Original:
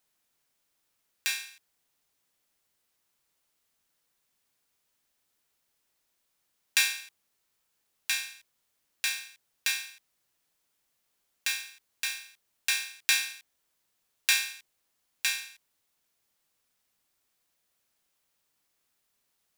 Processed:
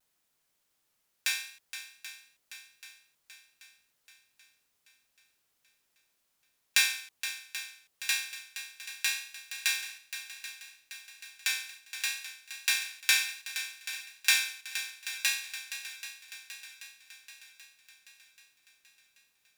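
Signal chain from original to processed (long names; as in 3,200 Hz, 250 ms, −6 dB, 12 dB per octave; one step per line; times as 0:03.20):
pitch vibrato 0.67 Hz 33 cents
feedback echo with a long and a short gap by turns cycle 783 ms, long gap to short 1.5 to 1, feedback 52%, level −11.5 dB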